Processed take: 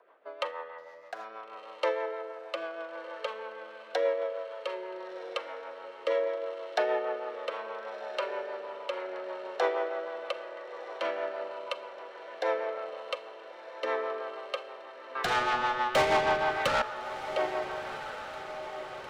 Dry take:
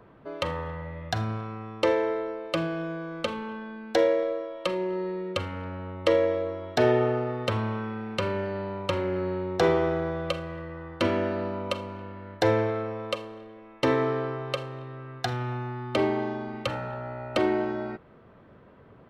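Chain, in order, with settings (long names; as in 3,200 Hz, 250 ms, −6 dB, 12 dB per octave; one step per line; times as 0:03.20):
0:00.78–0:01.25: running median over 15 samples
high-pass filter 530 Hz 24 dB per octave
high-shelf EQ 4,300 Hz −10.5 dB
0:15.15–0:16.82: mid-hump overdrive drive 28 dB, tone 6,200 Hz, clips at −15.5 dBFS
rotating-speaker cabinet horn 6.3 Hz
on a send: feedback delay with all-pass diffusion 1,373 ms, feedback 63%, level −11.5 dB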